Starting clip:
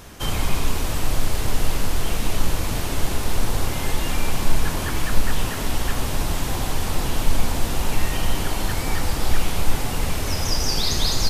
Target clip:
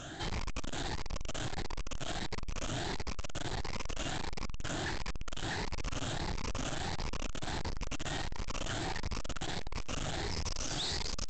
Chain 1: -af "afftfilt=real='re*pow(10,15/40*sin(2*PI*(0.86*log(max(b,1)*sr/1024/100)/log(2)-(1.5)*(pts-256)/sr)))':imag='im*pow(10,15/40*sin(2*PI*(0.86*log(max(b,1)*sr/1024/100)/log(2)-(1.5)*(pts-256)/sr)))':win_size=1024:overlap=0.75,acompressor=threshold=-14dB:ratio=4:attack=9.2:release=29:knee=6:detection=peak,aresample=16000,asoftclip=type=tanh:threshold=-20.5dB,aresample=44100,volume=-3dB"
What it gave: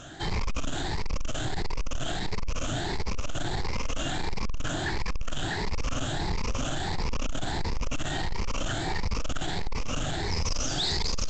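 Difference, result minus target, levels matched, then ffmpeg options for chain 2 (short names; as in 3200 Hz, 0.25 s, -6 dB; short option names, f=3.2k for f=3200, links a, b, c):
soft clip: distortion -5 dB
-af "afftfilt=real='re*pow(10,15/40*sin(2*PI*(0.86*log(max(b,1)*sr/1024/100)/log(2)-(1.5)*(pts-256)/sr)))':imag='im*pow(10,15/40*sin(2*PI*(0.86*log(max(b,1)*sr/1024/100)/log(2)-(1.5)*(pts-256)/sr)))':win_size=1024:overlap=0.75,acompressor=threshold=-14dB:ratio=4:attack=9.2:release=29:knee=6:detection=peak,aresample=16000,asoftclip=type=tanh:threshold=-31dB,aresample=44100,volume=-3dB"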